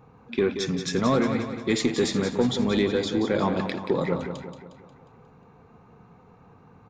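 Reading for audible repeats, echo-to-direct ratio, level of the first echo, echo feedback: 5, −7.0 dB, −8.5 dB, 50%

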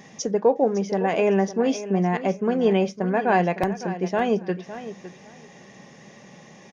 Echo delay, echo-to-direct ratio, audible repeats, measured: 558 ms, −13.5 dB, 2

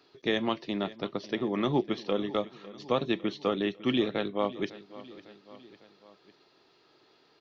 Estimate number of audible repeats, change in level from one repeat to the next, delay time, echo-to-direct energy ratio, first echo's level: 3, −4.5 dB, 552 ms, −16.5 dB, −18.0 dB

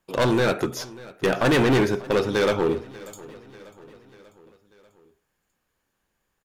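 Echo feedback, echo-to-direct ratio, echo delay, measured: 56%, −19.0 dB, 591 ms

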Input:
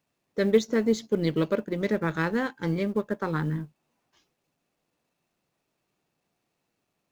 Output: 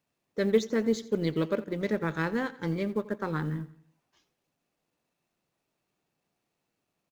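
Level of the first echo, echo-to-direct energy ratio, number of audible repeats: −18.5 dB, −17.5 dB, 3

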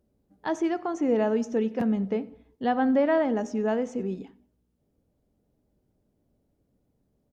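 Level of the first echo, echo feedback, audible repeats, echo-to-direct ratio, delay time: −24.0 dB, 38%, 2, −23.5 dB, 91 ms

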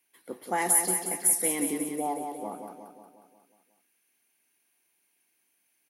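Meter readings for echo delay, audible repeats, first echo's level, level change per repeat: 180 ms, 6, −6.0 dB, −5.0 dB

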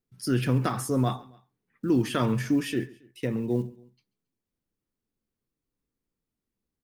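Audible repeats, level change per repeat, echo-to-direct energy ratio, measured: 2, −6.0 dB, −21.5 dB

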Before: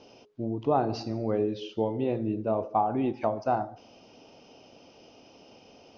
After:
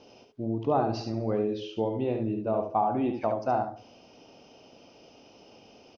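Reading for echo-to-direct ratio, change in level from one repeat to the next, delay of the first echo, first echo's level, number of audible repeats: −6.0 dB, repeats not evenly spaced, 71 ms, −6.0 dB, 1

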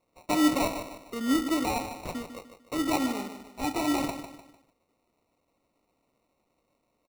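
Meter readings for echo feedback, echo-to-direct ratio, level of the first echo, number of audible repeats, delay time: 38%, −9.0 dB, −9.5 dB, 4, 150 ms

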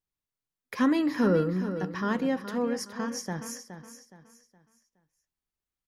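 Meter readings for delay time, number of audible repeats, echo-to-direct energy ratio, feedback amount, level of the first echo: 418 ms, 3, −10.0 dB, 35%, −10.5 dB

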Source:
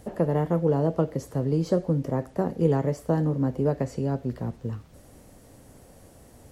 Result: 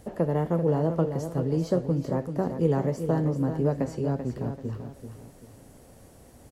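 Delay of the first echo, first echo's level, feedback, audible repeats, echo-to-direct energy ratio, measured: 387 ms, −8.5 dB, 35%, 3, −8.0 dB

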